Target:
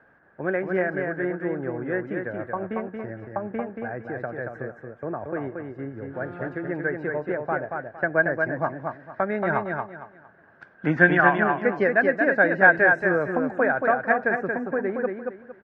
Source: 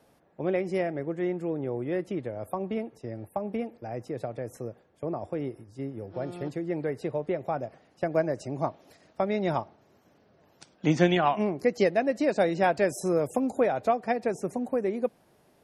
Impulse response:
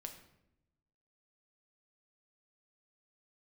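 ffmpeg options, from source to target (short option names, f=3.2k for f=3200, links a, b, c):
-filter_complex "[0:a]lowpass=f=1.6k:t=q:w=11,asplit=2[a][b];[b]aecho=0:1:229|458|687|916:0.596|0.161|0.0434|0.0117[c];[a][c]amix=inputs=2:normalize=0"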